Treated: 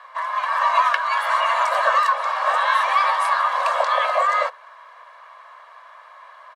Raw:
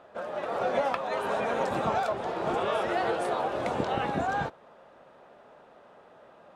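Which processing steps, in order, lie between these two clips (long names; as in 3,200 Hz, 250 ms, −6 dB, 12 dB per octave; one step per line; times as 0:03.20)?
frequency shifter +440 Hz
comb filter 1.8 ms, depth 51%
level +8 dB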